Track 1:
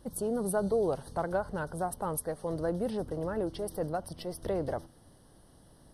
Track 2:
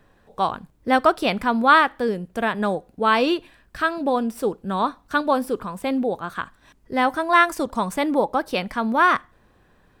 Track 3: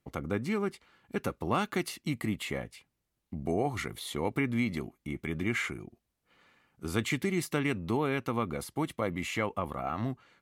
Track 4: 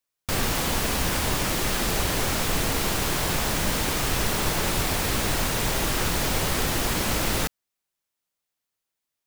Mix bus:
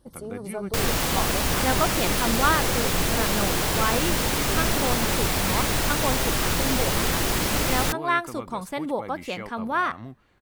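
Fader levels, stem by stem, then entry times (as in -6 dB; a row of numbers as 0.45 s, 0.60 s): -4.5 dB, -7.5 dB, -6.5 dB, +1.0 dB; 0.00 s, 0.75 s, 0.00 s, 0.45 s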